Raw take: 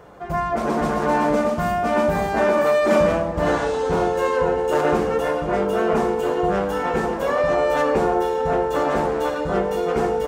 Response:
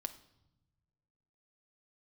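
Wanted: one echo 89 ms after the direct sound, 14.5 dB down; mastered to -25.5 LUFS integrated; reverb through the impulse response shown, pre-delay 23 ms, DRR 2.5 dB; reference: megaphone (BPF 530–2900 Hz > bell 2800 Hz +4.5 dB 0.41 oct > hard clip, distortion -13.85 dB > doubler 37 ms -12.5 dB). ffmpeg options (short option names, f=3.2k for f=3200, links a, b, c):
-filter_complex "[0:a]aecho=1:1:89:0.188,asplit=2[a][b];[1:a]atrim=start_sample=2205,adelay=23[c];[b][c]afir=irnorm=-1:irlink=0,volume=-0.5dB[d];[a][d]amix=inputs=2:normalize=0,highpass=530,lowpass=2.9k,equalizer=f=2.8k:t=o:w=0.41:g=4.5,asoftclip=type=hard:threshold=-18dB,asplit=2[e][f];[f]adelay=37,volume=-12.5dB[g];[e][g]amix=inputs=2:normalize=0,volume=-2.5dB"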